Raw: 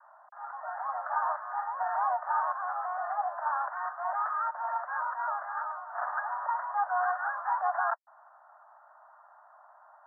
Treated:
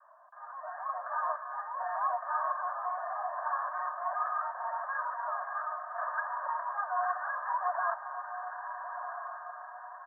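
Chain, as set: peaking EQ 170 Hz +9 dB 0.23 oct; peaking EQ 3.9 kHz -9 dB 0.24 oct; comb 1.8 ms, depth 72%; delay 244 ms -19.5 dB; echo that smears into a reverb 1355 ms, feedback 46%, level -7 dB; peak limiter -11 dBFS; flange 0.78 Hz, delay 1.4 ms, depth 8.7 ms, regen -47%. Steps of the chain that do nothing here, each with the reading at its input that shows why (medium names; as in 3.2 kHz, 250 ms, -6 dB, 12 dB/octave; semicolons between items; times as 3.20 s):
peaking EQ 170 Hz: input has nothing below 540 Hz; peaking EQ 3.9 kHz: input has nothing above 1.9 kHz; peak limiter -11 dBFS: peak at its input -15.5 dBFS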